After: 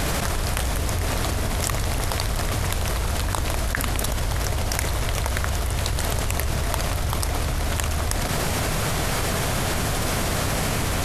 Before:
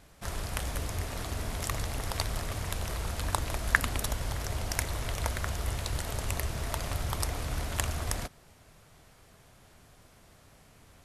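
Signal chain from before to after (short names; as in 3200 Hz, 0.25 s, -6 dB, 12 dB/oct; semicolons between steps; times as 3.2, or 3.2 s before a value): fast leveller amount 100%; gain -4 dB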